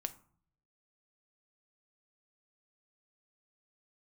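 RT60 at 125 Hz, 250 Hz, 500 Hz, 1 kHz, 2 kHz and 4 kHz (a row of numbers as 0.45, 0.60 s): 0.95, 0.75, 0.50, 0.55, 0.40, 0.25 s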